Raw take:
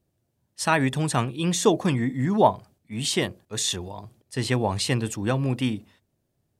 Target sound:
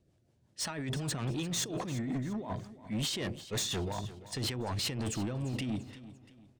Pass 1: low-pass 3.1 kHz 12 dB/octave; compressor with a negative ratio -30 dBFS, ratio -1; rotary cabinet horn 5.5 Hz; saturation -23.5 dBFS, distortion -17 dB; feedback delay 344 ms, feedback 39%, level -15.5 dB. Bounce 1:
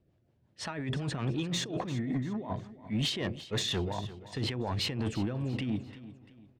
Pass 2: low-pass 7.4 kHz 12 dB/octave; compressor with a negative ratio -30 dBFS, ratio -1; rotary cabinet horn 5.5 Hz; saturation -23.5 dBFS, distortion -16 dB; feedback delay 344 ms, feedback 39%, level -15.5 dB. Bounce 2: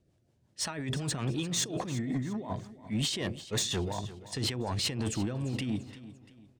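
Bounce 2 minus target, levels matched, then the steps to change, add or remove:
saturation: distortion -6 dB
change: saturation -29.5 dBFS, distortion -10 dB

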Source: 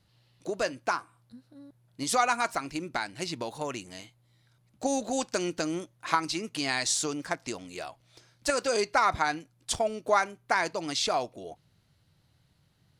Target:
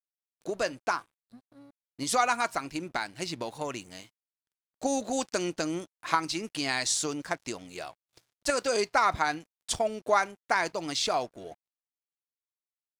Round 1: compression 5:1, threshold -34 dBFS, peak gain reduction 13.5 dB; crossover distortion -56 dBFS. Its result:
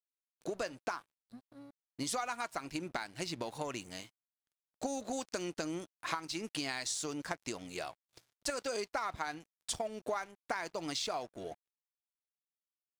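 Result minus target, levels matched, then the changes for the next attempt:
compression: peak gain reduction +13.5 dB
remove: compression 5:1, threshold -34 dBFS, peak gain reduction 13.5 dB

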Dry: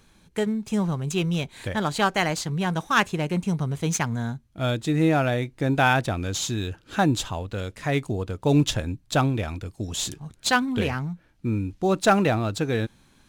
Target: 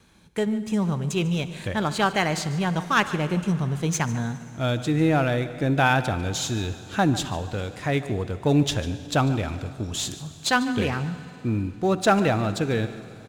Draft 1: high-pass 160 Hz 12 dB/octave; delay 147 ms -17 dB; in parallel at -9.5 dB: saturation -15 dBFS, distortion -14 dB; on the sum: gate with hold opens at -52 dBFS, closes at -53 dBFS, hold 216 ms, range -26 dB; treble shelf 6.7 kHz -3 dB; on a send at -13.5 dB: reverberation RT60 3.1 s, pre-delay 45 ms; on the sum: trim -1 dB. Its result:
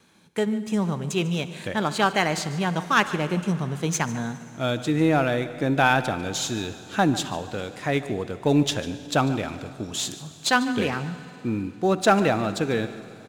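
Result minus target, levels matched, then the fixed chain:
saturation: distortion -8 dB; 125 Hz band -3.5 dB
high-pass 47 Hz 12 dB/octave; delay 147 ms -17 dB; in parallel at -9.5 dB: saturation -26 dBFS, distortion -6 dB; on the sum: gate with hold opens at -52 dBFS, closes at -53 dBFS, hold 216 ms, range -26 dB; treble shelf 6.7 kHz -3 dB; on a send at -13.5 dB: reverberation RT60 3.1 s, pre-delay 45 ms; on the sum: trim -1 dB

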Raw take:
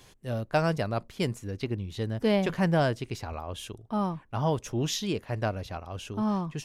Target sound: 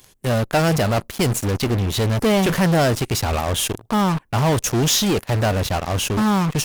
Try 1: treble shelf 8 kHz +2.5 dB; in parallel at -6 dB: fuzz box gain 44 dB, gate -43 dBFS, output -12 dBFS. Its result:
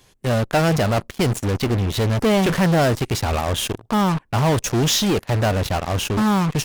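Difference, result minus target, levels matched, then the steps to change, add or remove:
8 kHz band -3.0 dB
change: treble shelf 8 kHz +13.5 dB

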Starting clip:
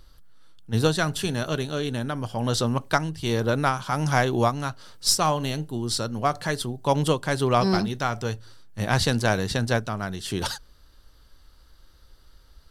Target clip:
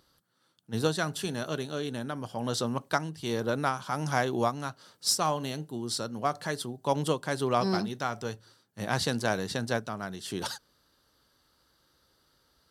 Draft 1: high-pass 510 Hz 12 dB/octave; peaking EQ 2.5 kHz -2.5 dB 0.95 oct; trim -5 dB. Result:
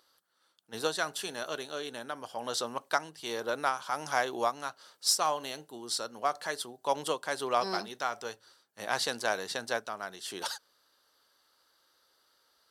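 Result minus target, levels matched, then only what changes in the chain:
125 Hz band -16.5 dB
change: high-pass 150 Hz 12 dB/octave

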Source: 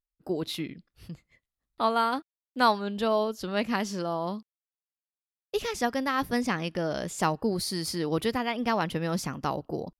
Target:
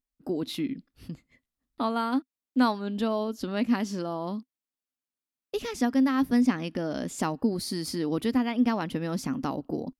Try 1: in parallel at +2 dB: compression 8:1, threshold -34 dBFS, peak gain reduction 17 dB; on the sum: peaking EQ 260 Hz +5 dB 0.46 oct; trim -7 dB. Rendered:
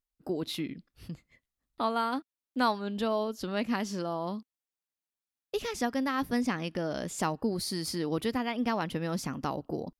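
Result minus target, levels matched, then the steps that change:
250 Hz band -2.5 dB
change: peaking EQ 260 Hz +14.5 dB 0.46 oct

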